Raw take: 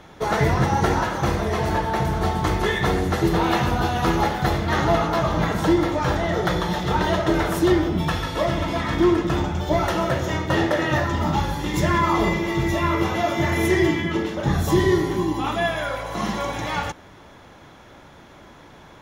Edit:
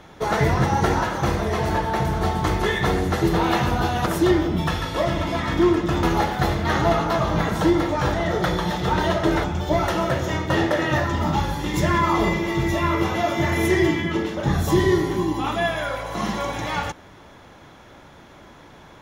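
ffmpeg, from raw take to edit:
-filter_complex "[0:a]asplit=4[s0][s1][s2][s3];[s0]atrim=end=4.062[s4];[s1]atrim=start=7.468:end=9.442[s5];[s2]atrim=start=4.058:end=7.472[s6];[s3]atrim=start=9.438[s7];[s4][s5]acrossfade=d=0.004:c1=hsin:c2=hsin[s8];[s8][s6]acrossfade=d=0.004:c1=hsin:c2=hsin[s9];[s9][s7]acrossfade=d=0.004:c1=hsin:c2=hsin"

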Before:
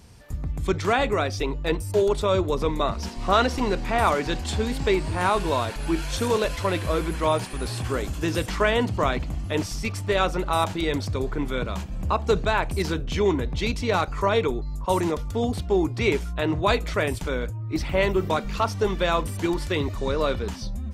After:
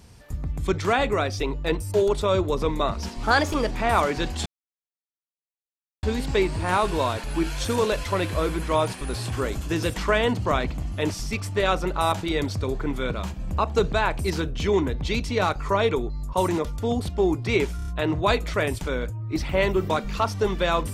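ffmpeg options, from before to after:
-filter_complex "[0:a]asplit=8[s0][s1][s2][s3][s4][s5][s6][s7];[s0]atrim=end=3.234[s8];[s1]atrim=start=3.23:end=3.8,asetpts=PTS-STARTPTS,asetrate=52479,aresample=44100[s9];[s2]atrim=start=3.796:end=4.55,asetpts=PTS-STARTPTS,afade=t=out:st=0.75:d=0.004:c=hsin,apad=pad_dur=1.57[s10];[s3]atrim=start=4.55:end=16.312,asetpts=PTS-STARTPTS,afade=t=in:d=0.004:c=hsin[s11];[s4]atrim=start=16.278:end=16.312[s12];[s5]atrim=start=16.278:end=16.312[s13];[s6]atrim=start=16.278:end=16.312[s14];[s7]atrim=start=16.278[s15];[s8][s9]acrossfade=d=0.004:c1=hsin:c2=hsin[s16];[s10][s11]concat=n=2:v=0:a=1[s17];[s16][s17]acrossfade=d=0.004:c1=hsin:c2=hsin[s18];[s18][s12]acrossfade=d=0.004:c1=hsin:c2=hsin[s19];[s19][s13]acrossfade=d=0.004:c1=hsin:c2=hsin[s20];[s20][s14]acrossfade=d=0.004:c1=hsin:c2=hsin[s21];[s21][s15]acrossfade=d=0.004:c1=hsin:c2=hsin"

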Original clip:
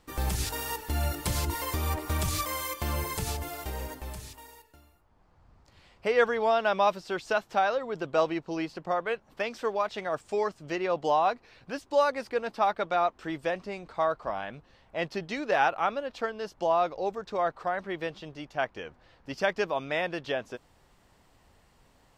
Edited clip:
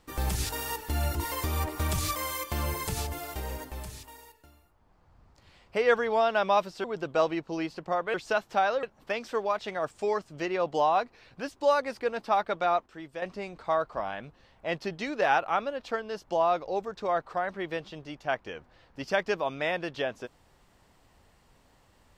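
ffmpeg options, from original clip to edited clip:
-filter_complex "[0:a]asplit=7[s0][s1][s2][s3][s4][s5][s6];[s0]atrim=end=1.152[s7];[s1]atrim=start=1.448:end=7.142[s8];[s2]atrim=start=7.828:end=9.132[s9];[s3]atrim=start=7.138:end=7.832[s10];[s4]atrim=start=9.128:end=13.162[s11];[s5]atrim=start=13.158:end=13.522,asetpts=PTS-STARTPTS,volume=0.376[s12];[s6]atrim=start=13.518[s13];[s7][s8]acrossfade=d=0.004:c1=hsin:c2=hsin[s14];[s14][s9]acrossfade=d=0.004:c1=hsin:c2=hsin[s15];[s15][s10]acrossfade=d=0.004:c1=hsin:c2=hsin[s16];[s16][s11]acrossfade=d=0.004:c1=hsin:c2=hsin[s17];[s17][s12]acrossfade=d=0.004:c1=hsin:c2=hsin[s18];[s18][s13]acrossfade=d=0.004:c1=hsin:c2=hsin"

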